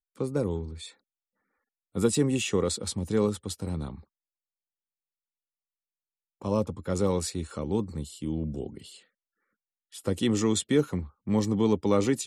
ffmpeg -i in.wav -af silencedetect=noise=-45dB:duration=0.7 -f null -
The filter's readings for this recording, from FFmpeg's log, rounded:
silence_start: 0.91
silence_end: 1.95 | silence_duration: 1.05
silence_start: 4.01
silence_end: 6.41 | silence_duration: 2.40
silence_start: 8.99
silence_end: 9.92 | silence_duration: 0.93